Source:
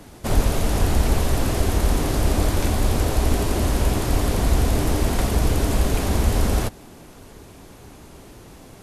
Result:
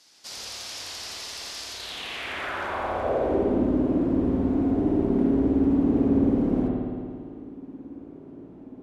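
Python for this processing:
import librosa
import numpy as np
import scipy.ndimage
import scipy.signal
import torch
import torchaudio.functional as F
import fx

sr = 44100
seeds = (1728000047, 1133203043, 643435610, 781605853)

y = fx.filter_sweep_bandpass(x, sr, from_hz=5000.0, to_hz=280.0, start_s=1.7, end_s=3.53, q=3.0)
y = fx.rev_spring(y, sr, rt60_s=2.1, pass_ms=(55,), chirp_ms=70, drr_db=-4.0)
y = y * 10.0 ** (3.0 / 20.0)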